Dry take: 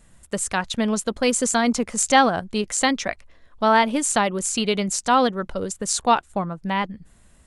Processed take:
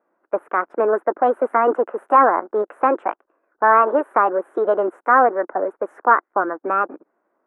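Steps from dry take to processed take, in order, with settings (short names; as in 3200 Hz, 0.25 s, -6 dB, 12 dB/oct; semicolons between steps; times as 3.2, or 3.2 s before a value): formant shift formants +5 st; sample leveller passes 2; elliptic band-pass 320–1500 Hz, stop band 50 dB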